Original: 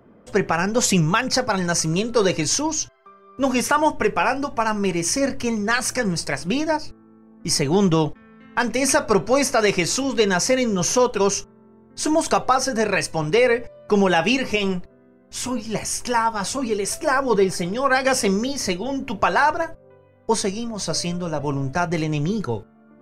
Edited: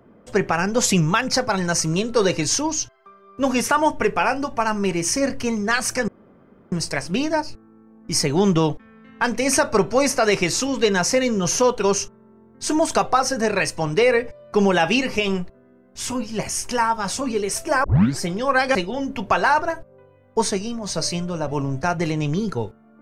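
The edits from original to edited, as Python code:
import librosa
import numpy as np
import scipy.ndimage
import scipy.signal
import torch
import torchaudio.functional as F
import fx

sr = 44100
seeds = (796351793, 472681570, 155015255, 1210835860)

y = fx.edit(x, sr, fx.insert_room_tone(at_s=6.08, length_s=0.64),
    fx.tape_start(start_s=17.2, length_s=0.35),
    fx.cut(start_s=18.11, length_s=0.56), tone=tone)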